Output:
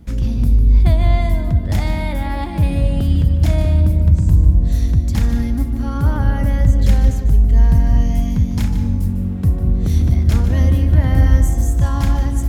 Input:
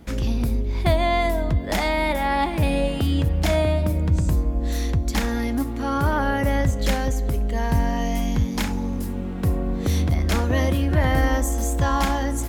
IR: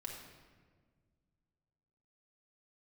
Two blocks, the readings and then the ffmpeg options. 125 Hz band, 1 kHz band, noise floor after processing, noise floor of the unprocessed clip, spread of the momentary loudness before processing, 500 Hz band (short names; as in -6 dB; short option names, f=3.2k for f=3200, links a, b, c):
+9.0 dB, -5.5 dB, -22 dBFS, -27 dBFS, 5 LU, -4.5 dB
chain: -filter_complex "[0:a]bass=f=250:g=13,treble=f=4k:g=3,asplit=2[a][b];[1:a]atrim=start_sample=2205,lowshelf=f=170:g=7.5,adelay=149[c];[b][c]afir=irnorm=-1:irlink=0,volume=-6.5dB[d];[a][d]amix=inputs=2:normalize=0,volume=-6dB"